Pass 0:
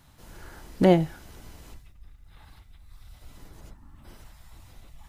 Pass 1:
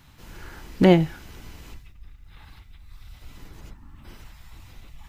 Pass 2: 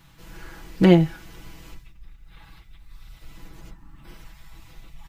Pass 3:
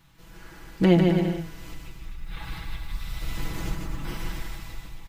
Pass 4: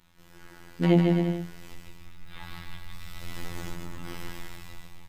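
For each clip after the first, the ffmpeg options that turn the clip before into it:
ffmpeg -i in.wav -af "equalizer=frequency=630:width_type=o:width=0.67:gain=-5,equalizer=frequency=2500:width_type=o:width=0.67:gain=4,equalizer=frequency=10000:width_type=o:width=0.67:gain=-6,volume=4dB" out.wav
ffmpeg -i in.wav -af "aecho=1:1:6.1:0.65,volume=-1.5dB" out.wav
ffmpeg -i in.wav -af "dynaudnorm=framelen=260:gausssize=7:maxgain=16.5dB,aecho=1:1:150|262.5|346.9|410.2|457.6:0.631|0.398|0.251|0.158|0.1,volume=-5dB" out.wav
ffmpeg -i in.wav -af "bandreject=frequency=60:width_type=h:width=6,bandreject=frequency=120:width_type=h:width=6,bandreject=frequency=180:width_type=h:width=6,afftfilt=real='hypot(re,im)*cos(PI*b)':imag='0':win_size=2048:overlap=0.75" out.wav

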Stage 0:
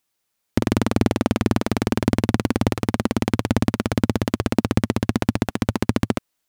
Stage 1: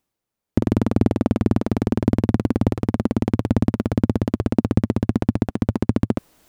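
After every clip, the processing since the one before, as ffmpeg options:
ffmpeg -i in.wav -af "tiltshelf=frequency=970:gain=7,areverse,acompressor=mode=upward:threshold=-31dB:ratio=2.5,areverse,volume=-4.5dB" out.wav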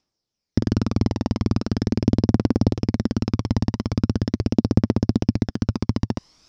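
ffmpeg -i in.wav -af "aphaser=in_gain=1:out_gain=1:delay=1.1:decay=0.42:speed=0.41:type=triangular,lowpass=frequency=5300:width_type=q:width=7.9,volume=-4dB" out.wav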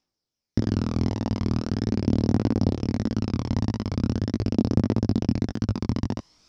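ffmpeg -i in.wav -af "flanger=delay=18:depth=6.3:speed=1.6" out.wav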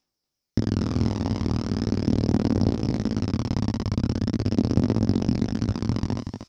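ffmpeg -i in.wav -af "crystalizer=i=0.5:c=0,aecho=1:1:236:0.447" out.wav

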